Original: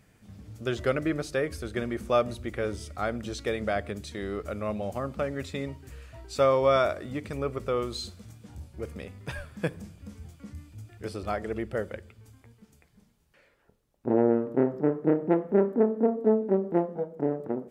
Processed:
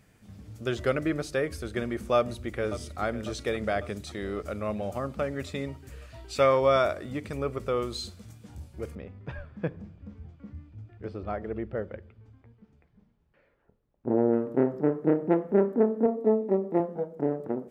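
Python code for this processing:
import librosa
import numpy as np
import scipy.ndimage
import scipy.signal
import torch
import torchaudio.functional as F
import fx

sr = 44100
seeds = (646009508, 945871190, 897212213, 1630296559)

y = fx.echo_throw(x, sr, start_s=2.16, length_s=0.85, ms=550, feedback_pct=65, wet_db=-13.0)
y = fx.peak_eq(y, sr, hz=fx.line((6.09, 4700.0), (6.59, 1500.0)), db=7.5, octaves=0.77, at=(6.09, 6.59), fade=0.02)
y = fx.spacing_loss(y, sr, db_at_10k=34, at=(8.95, 14.33))
y = fx.notch_comb(y, sr, f0_hz=1500.0, at=(16.06, 16.8))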